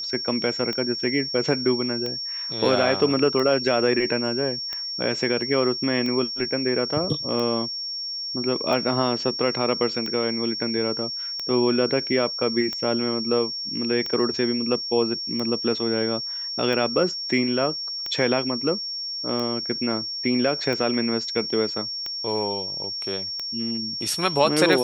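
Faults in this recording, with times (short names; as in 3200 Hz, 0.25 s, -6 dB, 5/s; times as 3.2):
tick 45 rpm -16 dBFS
tone 5500 Hz -28 dBFS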